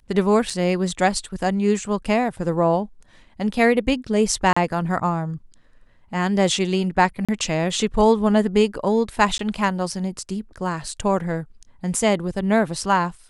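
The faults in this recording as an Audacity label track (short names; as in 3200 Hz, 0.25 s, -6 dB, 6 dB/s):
0.500000	0.500000	gap 3.4 ms
4.530000	4.570000	gap 35 ms
7.250000	7.290000	gap 36 ms
9.380000	9.390000	gap 13 ms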